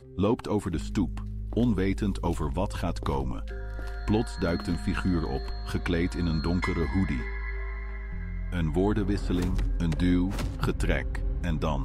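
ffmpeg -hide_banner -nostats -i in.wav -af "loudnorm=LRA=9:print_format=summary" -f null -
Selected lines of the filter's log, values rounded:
Input Integrated:    -29.3 LUFS
Input True Peak:     -12.1 dBTP
Input LRA:             1.8 LU
Input Threshold:     -39.3 LUFS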